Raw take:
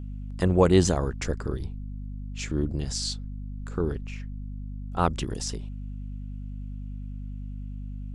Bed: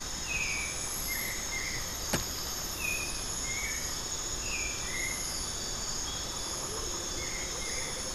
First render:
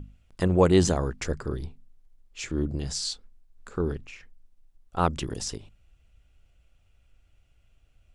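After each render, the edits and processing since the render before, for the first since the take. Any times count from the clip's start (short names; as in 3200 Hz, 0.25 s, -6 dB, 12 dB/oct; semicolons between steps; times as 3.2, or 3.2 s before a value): notches 50/100/150/200/250 Hz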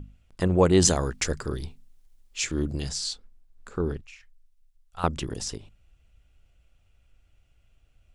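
0.82–2.89 high shelf 2200 Hz +10.5 dB; 4.01–5.04 passive tone stack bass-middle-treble 10-0-10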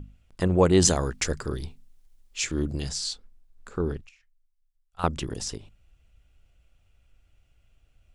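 4.09–4.99 gain -11 dB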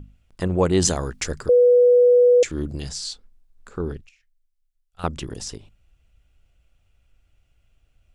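1.49–2.43 bleep 490 Hz -10.5 dBFS; 3.93–5.05 bell 980 Hz -8.5 dB 0.83 oct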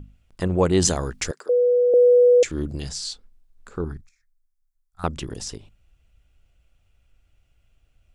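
1.31–1.94 ladder high-pass 350 Hz, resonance 25%; 3.84–5.04 fixed phaser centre 1200 Hz, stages 4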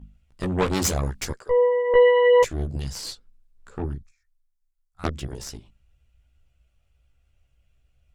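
added harmonics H 2 -6 dB, 3 -24 dB, 5 -37 dB, 8 -16 dB, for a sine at -6 dBFS; chorus voices 4, 0.86 Hz, delay 15 ms, depth 1.1 ms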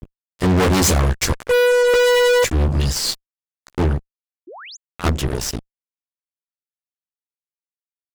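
fuzz box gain 31 dB, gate -40 dBFS; 4.47–4.77 painted sound rise 300–7400 Hz -37 dBFS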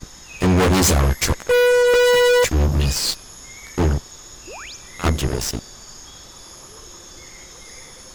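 add bed -5 dB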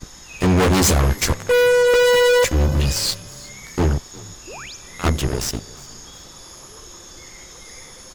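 frequency-shifting echo 0.359 s, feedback 41%, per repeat +30 Hz, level -22 dB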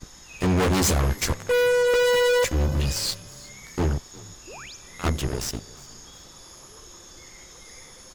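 gain -5.5 dB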